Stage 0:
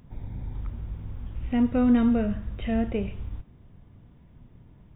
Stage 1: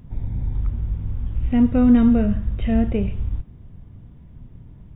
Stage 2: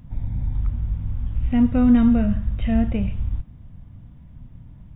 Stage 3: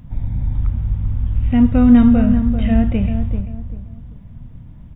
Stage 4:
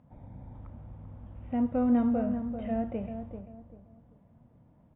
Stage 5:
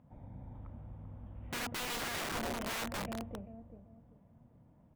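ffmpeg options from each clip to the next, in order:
ffmpeg -i in.wav -af "lowshelf=frequency=240:gain=9.5,volume=1.5dB" out.wav
ffmpeg -i in.wav -af "equalizer=frequency=400:width_type=o:width=0.39:gain=-13" out.wav
ffmpeg -i in.wav -filter_complex "[0:a]asplit=2[link_01][link_02];[link_02]adelay=390,lowpass=frequency=1100:poles=1,volume=-8dB,asplit=2[link_03][link_04];[link_04]adelay=390,lowpass=frequency=1100:poles=1,volume=0.32,asplit=2[link_05][link_06];[link_06]adelay=390,lowpass=frequency=1100:poles=1,volume=0.32,asplit=2[link_07][link_08];[link_08]adelay=390,lowpass=frequency=1100:poles=1,volume=0.32[link_09];[link_01][link_03][link_05][link_07][link_09]amix=inputs=5:normalize=0,volume=4.5dB" out.wav
ffmpeg -i in.wav -af "bandpass=frequency=600:width_type=q:width=1.3:csg=0,volume=-6dB" out.wav
ffmpeg -i in.wav -af "aeval=exprs='(mod(33.5*val(0)+1,2)-1)/33.5':channel_layout=same,volume=-2.5dB" out.wav

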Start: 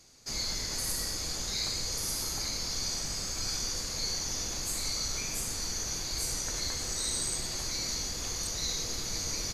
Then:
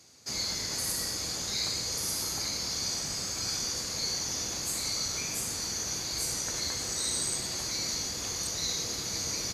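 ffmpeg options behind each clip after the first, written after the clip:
ffmpeg -i in.wav -af "highpass=85,volume=1.5dB" out.wav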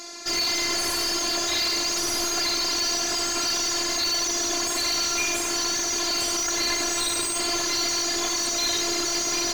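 ffmpeg -i in.wav -filter_complex "[0:a]afftfilt=real='hypot(re,im)*cos(PI*b)':imag='0':win_size=512:overlap=0.75,asplit=2[link_01][link_02];[link_02]highpass=frequency=720:poles=1,volume=32dB,asoftclip=type=tanh:threshold=-15.5dB[link_03];[link_01][link_03]amix=inputs=2:normalize=0,lowpass=frequency=2000:poles=1,volume=-6dB,volume=5.5dB" out.wav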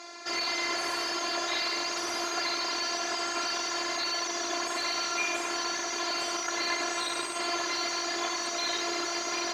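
ffmpeg -i in.wav -af "bandpass=frequency=1100:width_type=q:width=0.56:csg=0" out.wav

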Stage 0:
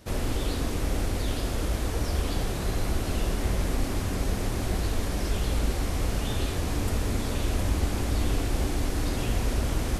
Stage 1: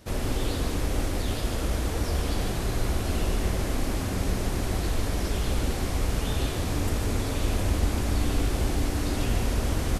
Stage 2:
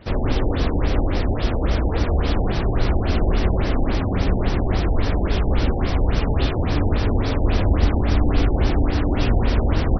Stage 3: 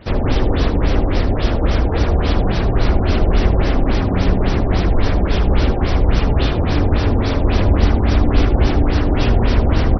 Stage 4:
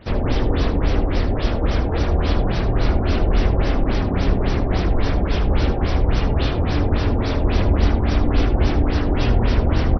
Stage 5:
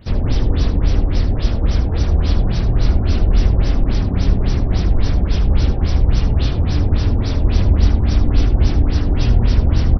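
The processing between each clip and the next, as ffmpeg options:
ffmpeg -i in.wav -af "aecho=1:1:145:0.501" out.wav
ffmpeg -i in.wav -af "afftfilt=real='re*lt(b*sr/1024,890*pow(6100/890,0.5+0.5*sin(2*PI*3.6*pts/sr)))':imag='im*lt(b*sr/1024,890*pow(6100/890,0.5+0.5*sin(2*PI*3.6*pts/sr)))':win_size=1024:overlap=0.75,volume=7.5dB" out.wav
ffmpeg -i in.wav -af "aecho=1:1:75|80|261:0.251|0.15|0.133,volume=4dB" out.wav
ffmpeg -i in.wav -filter_complex "[0:a]asplit=2[link_01][link_02];[link_02]adelay=25,volume=-12dB[link_03];[link_01][link_03]amix=inputs=2:normalize=0,volume=-3.5dB" out.wav
ffmpeg -i in.wav -af "bass=frequency=250:gain=10,treble=frequency=4000:gain=13,volume=-5.5dB" out.wav

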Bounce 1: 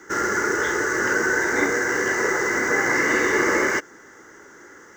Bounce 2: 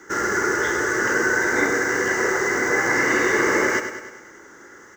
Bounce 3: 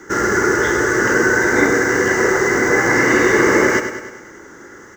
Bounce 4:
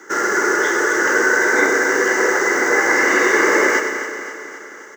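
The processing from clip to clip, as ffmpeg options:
ffmpeg -i in.wav -af "aecho=1:1:100|200|300|400|500|600|700:0.355|0.202|0.115|0.0657|0.0375|0.0213|0.0122" out.wav
ffmpeg -i in.wav -af "lowshelf=frequency=360:gain=7.5,volume=4dB" out.wav
ffmpeg -i in.wav -af "highpass=410,aecho=1:1:264|528|792|1056|1320|1584|1848:0.299|0.17|0.097|0.0553|0.0315|0.018|0.0102" out.wav

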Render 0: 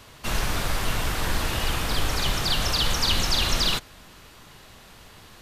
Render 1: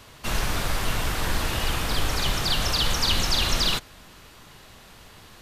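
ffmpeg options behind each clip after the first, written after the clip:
ffmpeg -i in.wav -af anull out.wav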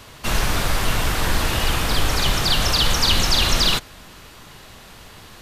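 ffmpeg -i in.wav -af "acontrast=36" out.wav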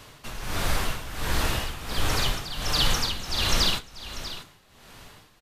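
ffmpeg -i in.wav -af "tremolo=f=1.4:d=0.78,aecho=1:1:642:0.224,flanger=delay=6.6:depth=9.3:regen=-52:speed=0.38:shape=sinusoidal" out.wav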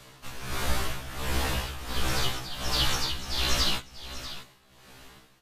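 ffmpeg -i in.wav -af "afftfilt=real='re*1.73*eq(mod(b,3),0)':imag='im*1.73*eq(mod(b,3),0)':win_size=2048:overlap=0.75" out.wav

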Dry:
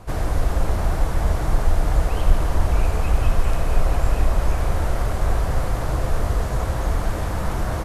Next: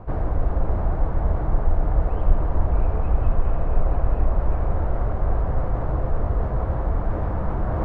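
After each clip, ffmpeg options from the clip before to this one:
ffmpeg -i in.wav -af "areverse,acompressor=mode=upward:threshold=-16dB:ratio=2.5,areverse,lowpass=1100,volume=-1.5dB" out.wav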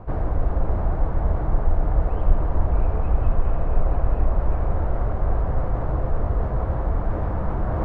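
ffmpeg -i in.wav -af anull out.wav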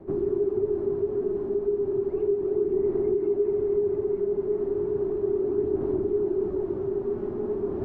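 ffmpeg -i in.wav -af "acompressor=threshold=-17dB:ratio=6,aphaser=in_gain=1:out_gain=1:delay=4.8:decay=0.33:speed=0.34:type=sinusoidal,afreqshift=-430,volume=-7dB" out.wav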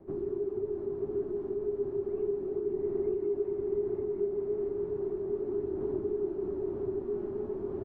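ffmpeg -i in.wav -af "aecho=1:1:935:0.631,volume=-8dB" out.wav

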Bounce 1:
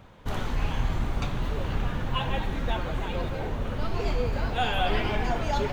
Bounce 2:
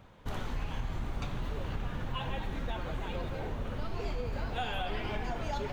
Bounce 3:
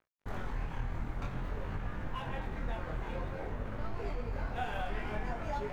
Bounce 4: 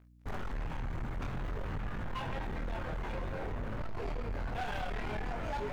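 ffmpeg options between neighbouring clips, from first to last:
ffmpeg -i in.wav -af "acompressor=threshold=-25dB:ratio=6,volume=-5dB" out.wav
ffmpeg -i in.wav -af "aeval=exprs='sgn(val(0))*max(abs(val(0))-0.00398,0)':channel_layout=same,flanger=delay=19:depth=6.6:speed=0.52,highshelf=frequency=2500:width_type=q:width=1.5:gain=-6,volume=2dB" out.wav
ffmpeg -i in.wav -af "asoftclip=type=tanh:threshold=-38dB,aeval=exprs='val(0)+0.000631*(sin(2*PI*60*n/s)+sin(2*PI*2*60*n/s)/2+sin(2*PI*3*60*n/s)/3+sin(2*PI*4*60*n/s)/4+sin(2*PI*5*60*n/s)/5)':channel_layout=same,volume=5.5dB" out.wav

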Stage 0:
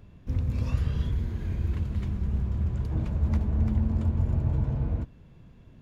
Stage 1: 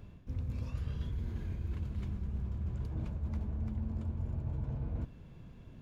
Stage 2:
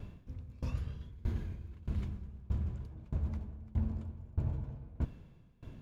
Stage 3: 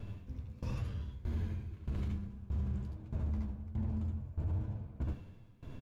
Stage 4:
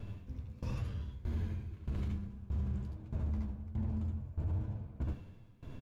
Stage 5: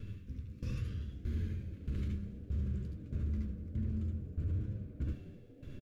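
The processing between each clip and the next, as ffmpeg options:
ffmpeg -i in.wav -af "bandreject=frequency=1900:width=23,areverse,acompressor=threshold=-35dB:ratio=4,areverse" out.wav
ffmpeg -i in.wav -af "aeval=exprs='val(0)*pow(10,-24*if(lt(mod(1.6*n/s,1),2*abs(1.6)/1000),1-mod(1.6*n/s,1)/(2*abs(1.6)/1000),(mod(1.6*n/s,1)-2*abs(1.6)/1000)/(1-2*abs(1.6)/1000))/20)':channel_layout=same,volume=6.5dB" out.wav
ffmpeg -i in.wav -af "flanger=delay=8.7:depth=6.8:regen=50:speed=1.3:shape=sinusoidal,aecho=1:1:70|80:0.596|0.531,alimiter=level_in=9dB:limit=-24dB:level=0:latency=1:release=32,volume=-9dB,volume=4.5dB" out.wav
ffmpeg -i in.wav -af anull out.wav
ffmpeg -i in.wav -filter_complex "[0:a]asuperstop=centerf=800:order=4:qfactor=0.96,asplit=6[link_01][link_02][link_03][link_04][link_05][link_06];[link_02]adelay=245,afreqshift=99,volume=-20dB[link_07];[link_03]adelay=490,afreqshift=198,volume=-24.3dB[link_08];[link_04]adelay=735,afreqshift=297,volume=-28.6dB[link_09];[link_05]adelay=980,afreqshift=396,volume=-32.9dB[link_10];[link_06]adelay=1225,afreqshift=495,volume=-37.2dB[link_11];[link_01][link_07][link_08][link_09][link_10][link_11]amix=inputs=6:normalize=0" out.wav

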